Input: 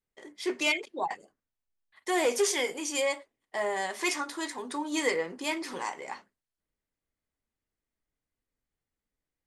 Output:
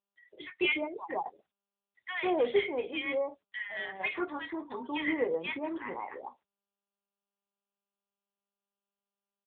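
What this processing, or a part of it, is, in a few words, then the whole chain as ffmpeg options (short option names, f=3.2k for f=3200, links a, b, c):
mobile call with aggressive noise cancelling: -filter_complex "[0:a]asplit=3[a][b][c];[a]afade=t=out:st=3.18:d=0.02[d];[b]equalizer=f=125:t=o:w=1:g=8,equalizer=f=250:t=o:w=1:g=-10,equalizer=f=500:t=o:w=1:g=-11,equalizer=f=1k:t=o:w=1:g=-10,equalizer=f=2k:t=o:w=1:g=3,equalizer=f=4k:t=o:w=1:g=5,equalizer=f=8k:t=o:w=1:g=9,afade=t=in:st=3.18:d=0.02,afade=t=out:st=3.84:d=0.02[e];[c]afade=t=in:st=3.84:d=0.02[f];[d][e][f]amix=inputs=3:normalize=0,highpass=f=120:p=1,acrossover=split=1100|4400[g][h][i];[i]adelay=50[j];[g]adelay=150[k];[k][h][j]amix=inputs=3:normalize=0,afftdn=nr=36:nf=-46" -ar 8000 -c:a libopencore_amrnb -b:a 10200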